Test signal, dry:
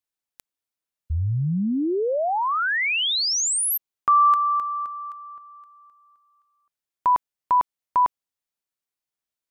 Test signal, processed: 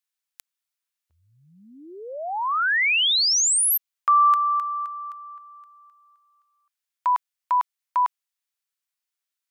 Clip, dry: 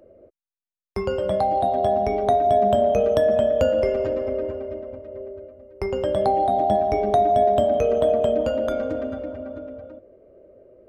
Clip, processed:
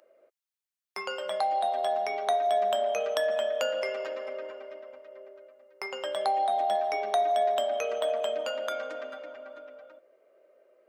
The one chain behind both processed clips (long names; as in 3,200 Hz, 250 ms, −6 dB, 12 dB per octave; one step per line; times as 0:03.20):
high-pass filter 1,200 Hz 12 dB per octave
level +3 dB